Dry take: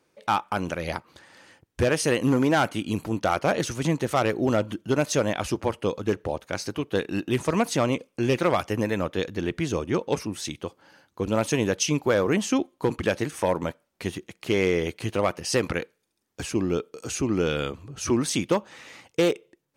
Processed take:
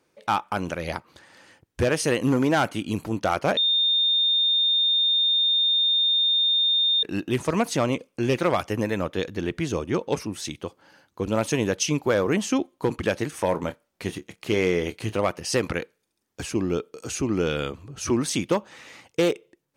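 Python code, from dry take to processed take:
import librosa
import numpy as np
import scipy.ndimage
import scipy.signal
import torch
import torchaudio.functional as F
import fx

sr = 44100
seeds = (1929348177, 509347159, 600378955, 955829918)

y = fx.doubler(x, sr, ms=28.0, db=-12.0, at=(13.49, 15.15))
y = fx.edit(y, sr, fx.bleep(start_s=3.57, length_s=3.46, hz=3640.0, db=-18.0), tone=tone)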